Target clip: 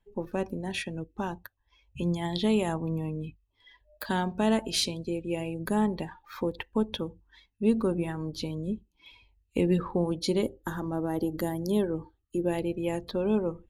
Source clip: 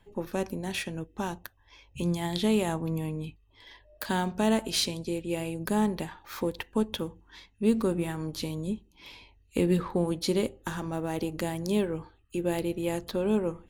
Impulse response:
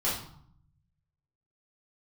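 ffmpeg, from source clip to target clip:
-filter_complex "[0:a]asettb=1/sr,asplit=3[a][b][c];[a]atrim=end=10.424[d];[b]atrim=start=10.42:end=12.48,asetpts=PTS-STARTPTS,afade=t=in:d=0.004:c=qsin,afade=t=out:st=2.056:d=0.004:c=qsin,equalizer=f=315:t=o:w=0.33:g=4,equalizer=f=2.5k:t=o:w=0.33:g=-9,equalizer=f=12.5k:t=o:w=0.33:g=10[e];[c]atrim=start=12.476[f];[d][e]acrossfade=d=0.004:c1=hsin:c2=qsin[g];[g][f]acrossfade=d=0.004:c1=qsin:c2=hsin,afftdn=nr=15:nf=-43"

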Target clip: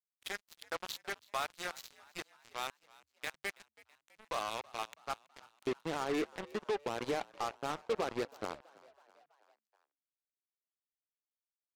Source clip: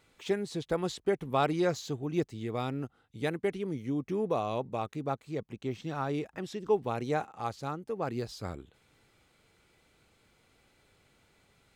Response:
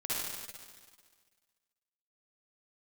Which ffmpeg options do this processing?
-filter_complex "[0:a]asetnsamples=n=441:p=0,asendcmd='5.67 highpass f 320',highpass=1.2k,alimiter=level_in=3.5dB:limit=-24dB:level=0:latency=1:release=167,volume=-3.5dB,flanger=delay=8.5:depth=2.3:regen=67:speed=0.45:shape=triangular,adynamicsmooth=sensitivity=5.5:basefreq=6.3k,acrusher=bits=6:mix=0:aa=0.5,asplit=5[a][b][c][d][e];[b]adelay=327,afreqshift=71,volume=-22.5dB[f];[c]adelay=654,afreqshift=142,volume=-27.1dB[g];[d]adelay=981,afreqshift=213,volume=-31.7dB[h];[e]adelay=1308,afreqshift=284,volume=-36.2dB[i];[a][f][g][h][i]amix=inputs=5:normalize=0,volume=7.5dB"

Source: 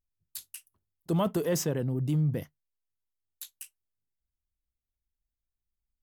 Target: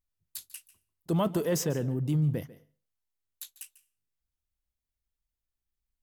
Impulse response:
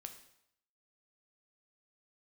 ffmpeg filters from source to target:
-filter_complex "[0:a]asplit=2[a][b];[1:a]atrim=start_sample=2205,asetrate=79380,aresample=44100,adelay=145[c];[b][c]afir=irnorm=-1:irlink=0,volume=-6.5dB[d];[a][d]amix=inputs=2:normalize=0"

